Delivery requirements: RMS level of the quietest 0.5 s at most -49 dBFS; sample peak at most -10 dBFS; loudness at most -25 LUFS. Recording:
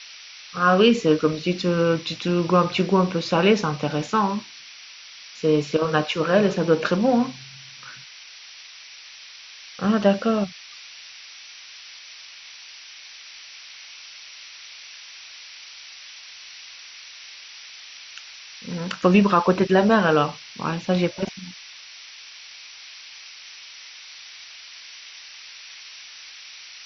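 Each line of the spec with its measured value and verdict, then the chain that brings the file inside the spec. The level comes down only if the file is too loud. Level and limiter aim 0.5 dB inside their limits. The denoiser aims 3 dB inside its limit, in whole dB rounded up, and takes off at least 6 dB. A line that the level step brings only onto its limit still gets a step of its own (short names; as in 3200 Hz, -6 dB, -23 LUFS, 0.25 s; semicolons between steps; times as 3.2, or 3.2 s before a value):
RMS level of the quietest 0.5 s -44 dBFS: fail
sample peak -4.5 dBFS: fail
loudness -21.0 LUFS: fail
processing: denoiser 6 dB, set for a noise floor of -44 dBFS; gain -4.5 dB; limiter -10.5 dBFS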